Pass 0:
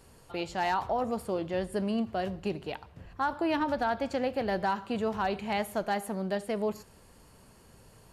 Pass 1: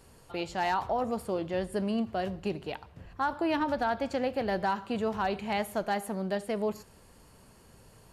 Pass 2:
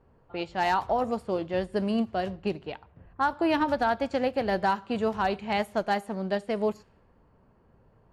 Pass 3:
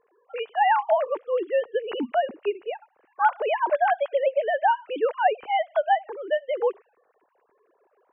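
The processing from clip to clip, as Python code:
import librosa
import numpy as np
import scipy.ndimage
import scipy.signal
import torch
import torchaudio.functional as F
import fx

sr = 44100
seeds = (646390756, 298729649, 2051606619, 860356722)

y1 = x
y2 = fx.env_lowpass(y1, sr, base_hz=1200.0, full_db=-25.5)
y2 = fx.upward_expand(y2, sr, threshold_db=-43.0, expansion=1.5)
y2 = y2 * 10.0 ** (4.5 / 20.0)
y3 = fx.sine_speech(y2, sr)
y3 = y3 * 10.0 ** (3.5 / 20.0)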